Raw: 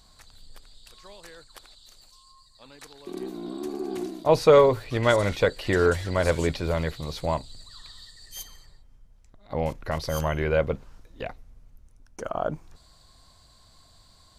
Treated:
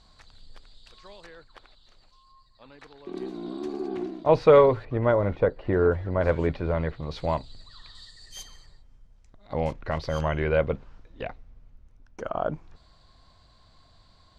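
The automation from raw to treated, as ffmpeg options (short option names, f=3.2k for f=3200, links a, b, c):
-af "asetnsamples=n=441:p=0,asendcmd='1.26 lowpass f 2700;3.15 lowpass f 4600;3.88 lowpass f 2700;4.85 lowpass f 1100;6.21 lowpass f 1800;7.11 lowpass f 3900;7.95 lowpass f 7000;9.71 lowpass f 3700',lowpass=4.6k"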